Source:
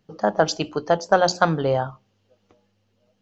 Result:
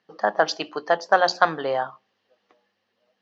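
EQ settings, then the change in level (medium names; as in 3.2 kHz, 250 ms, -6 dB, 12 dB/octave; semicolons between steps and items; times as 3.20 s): cabinet simulation 300–4900 Hz, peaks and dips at 740 Hz +4 dB, 1.1 kHz +6 dB, 1.8 kHz +10 dB; treble shelf 3.7 kHz +9 dB; -4.0 dB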